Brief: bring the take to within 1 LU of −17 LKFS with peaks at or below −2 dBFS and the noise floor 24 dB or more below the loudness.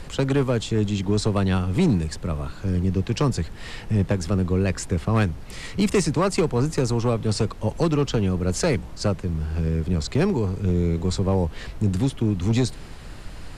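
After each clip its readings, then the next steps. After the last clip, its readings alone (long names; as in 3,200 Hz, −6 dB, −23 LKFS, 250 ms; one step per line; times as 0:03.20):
share of clipped samples 0.9%; peaks flattened at −13.5 dBFS; background noise floor −38 dBFS; target noise floor −48 dBFS; integrated loudness −23.5 LKFS; sample peak −13.5 dBFS; target loudness −17.0 LKFS
→ clipped peaks rebuilt −13.5 dBFS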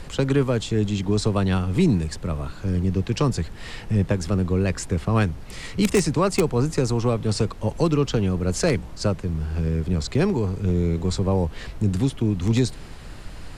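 share of clipped samples 0.0%; background noise floor −38 dBFS; target noise floor −48 dBFS
→ noise reduction from a noise print 10 dB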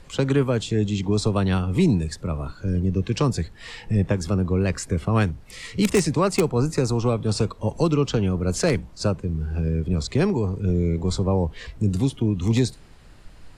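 background noise floor −46 dBFS; target noise floor −48 dBFS
→ noise reduction from a noise print 6 dB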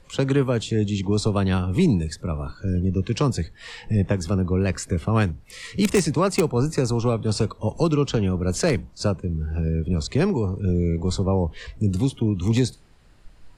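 background noise floor −51 dBFS; integrated loudness −23.5 LKFS; sample peak −4.5 dBFS; target loudness −17.0 LKFS
→ level +6.5 dB
brickwall limiter −2 dBFS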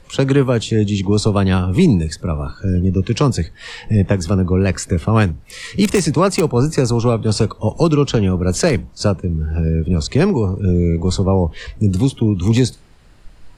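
integrated loudness −17.0 LKFS; sample peak −2.0 dBFS; background noise floor −45 dBFS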